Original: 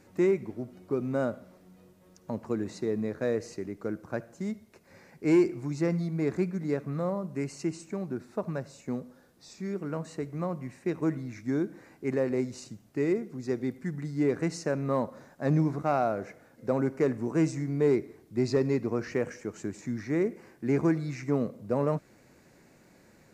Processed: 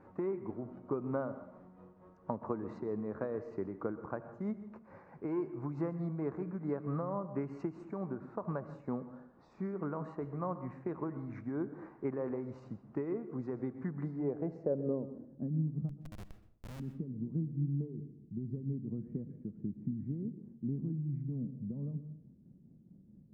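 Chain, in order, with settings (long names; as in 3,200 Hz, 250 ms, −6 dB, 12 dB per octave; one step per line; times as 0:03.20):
high-shelf EQ 5,400 Hz +7.5 dB
downward compressor 20 to 1, threshold −31 dBFS, peak gain reduction 14 dB
shaped tremolo triangle 4.5 Hz, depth 50%
low-pass filter sweep 1,100 Hz → 190 Hz, 0:13.99–0:15.63
0:15.89–0:16.80: comparator with hysteresis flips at −40.5 dBFS
convolution reverb RT60 0.60 s, pre-delay 117 ms, DRR 12.5 dB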